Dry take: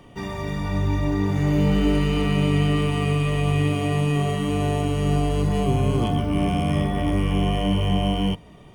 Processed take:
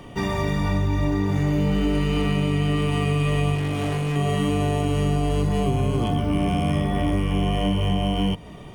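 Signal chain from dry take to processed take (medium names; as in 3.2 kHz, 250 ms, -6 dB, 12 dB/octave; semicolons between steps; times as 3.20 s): compression, threshold -25 dBFS, peak gain reduction 9.5 dB; 3.55–4.16 s: hard clipper -28 dBFS, distortion -20 dB; trim +6.5 dB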